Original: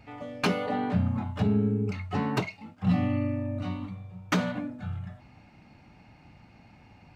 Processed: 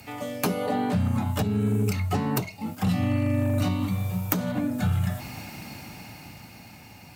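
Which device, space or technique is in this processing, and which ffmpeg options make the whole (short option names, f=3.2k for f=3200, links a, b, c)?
FM broadcast chain: -filter_complex "[0:a]highpass=71,dynaudnorm=f=300:g=11:m=11.5dB,acrossover=split=97|1000[a][b][c];[a]acompressor=threshold=-32dB:ratio=4[d];[b]acompressor=threshold=-29dB:ratio=4[e];[c]acompressor=threshold=-47dB:ratio=4[f];[d][e][f]amix=inputs=3:normalize=0,aemphasis=mode=production:type=50fm,alimiter=limit=-21dB:level=0:latency=1:release=392,asoftclip=type=hard:threshold=-23.5dB,lowpass=f=15k:w=0.5412,lowpass=f=15k:w=1.3066,aemphasis=mode=production:type=50fm,volume=6.5dB"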